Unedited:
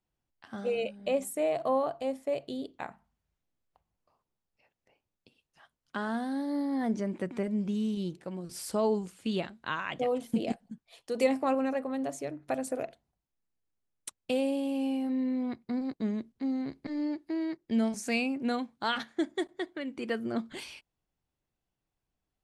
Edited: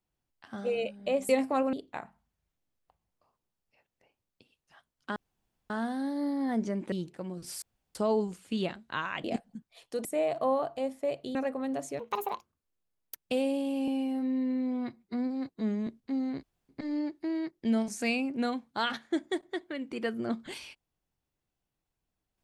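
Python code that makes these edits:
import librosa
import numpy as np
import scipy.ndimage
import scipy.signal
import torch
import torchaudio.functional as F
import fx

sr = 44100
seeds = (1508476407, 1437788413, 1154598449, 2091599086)

y = fx.edit(x, sr, fx.swap(start_s=1.29, length_s=1.3, other_s=11.21, other_length_s=0.44),
    fx.insert_room_tone(at_s=6.02, length_s=0.54),
    fx.cut(start_s=7.24, length_s=0.75),
    fx.insert_room_tone(at_s=8.69, length_s=0.33),
    fx.cut(start_s=9.98, length_s=0.42),
    fx.speed_span(start_s=12.29, length_s=1.91, speed=1.56),
    fx.stretch_span(start_s=14.86, length_s=1.33, factor=1.5),
    fx.insert_room_tone(at_s=16.75, length_s=0.26), tone=tone)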